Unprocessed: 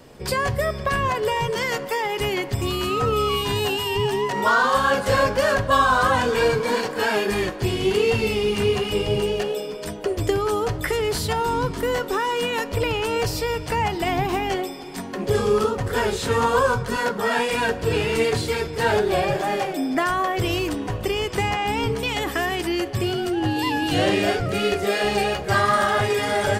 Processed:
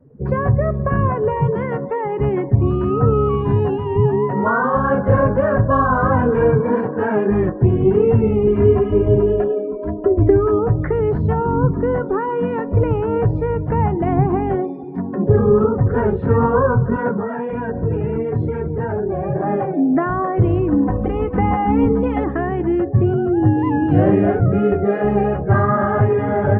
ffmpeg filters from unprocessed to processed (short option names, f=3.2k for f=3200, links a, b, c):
-filter_complex "[0:a]asettb=1/sr,asplit=3[a][b][c];[a]atrim=end=8.474[d];[b]atrim=start=8.47:end=10.59,asetpts=PTS-STARTPTS,afade=t=in:d=0.004:c=qsin,afade=t=out:st=2.116:d=0.004:c=qsin,aecho=1:1:3:0.74,atrim=end_sample=93492[e];[c]atrim=start=10.586[f];[d][e]acrossfade=d=0.004:c1=hsin:c2=qsin[g];[g][f]acrossfade=d=0.004:c1=qsin:c2=hsin,asettb=1/sr,asplit=3[h][i][j];[h]atrim=end=14.644[k];[i]atrim=start=14.64:end=15.29,asetpts=PTS-STARTPTS,afade=t=in:d=0.004:c=qsin,afade=t=out:st=0.646:d=0.004:c=qsin,highshelf=f=4.8k:g=8.5[l];[j]atrim=start=15.286[m];[k][l]acrossfade=d=0.004:c1=hsin:c2=qsin[n];[n][m]acrossfade=d=0.004:c1=qsin:c2=hsin,asplit=3[o][p][q];[o]afade=t=out:st=17.15:d=0.02[r];[p]acompressor=threshold=-23dB:ratio=6:attack=3.2:release=140:knee=1:detection=peak,afade=t=in:st=17.15:d=0.02,afade=t=out:st=19.35:d=0.02[s];[q]afade=t=in:st=19.35:d=0.02[t];[r][s][t]amix=inputs=3:normalize=0,asettb=1/sr,asplit=3[u][v][w];[u]atrim=end=20.724[x];[v]atrim=start=20.72:end=22.24,asetpts=PTS-STARTPTS,afade=t=in:d=0.004:c=qsin,afade=t=out:st=1.516:d=0.004:c=qsin,aecho=1:1:3.9:0.97,atrim=end_sample=67032[y];[w]atrim=start=22.236[z];[x][y]acrossfade=d=0.004:c1=hsin:c2=qsin[aa];[aa][z]acrossfade=d=0.004:c1=qsin:c2=hsin,afftdn=nr=19:nf=-35,lowpass=f=1.6k:w=0.5412,lowpass=f=1.6k:w=1.3066,equalizer=f=140:w=0.4:g=13.5,volume=-1dB"